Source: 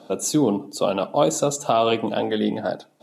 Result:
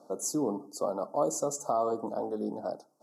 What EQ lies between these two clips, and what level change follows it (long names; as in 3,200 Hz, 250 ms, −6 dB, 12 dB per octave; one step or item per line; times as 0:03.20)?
high-pass filter 380 Hz 6 dB per octave
Chebyshev band-stop filter 1,200–5,100 Hz, order 3
dynamic equaliser 2,300 Hz, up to −7 dB, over −45 dBFS, Q 1.4
−6.5 dB